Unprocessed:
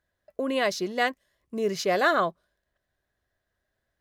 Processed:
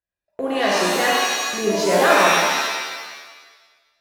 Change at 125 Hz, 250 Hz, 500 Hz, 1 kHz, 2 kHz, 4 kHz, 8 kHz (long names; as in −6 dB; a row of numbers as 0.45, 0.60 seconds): +8.0, +6.5, +8.0, +9.5, +10.0, +13.0, +17.0 decibels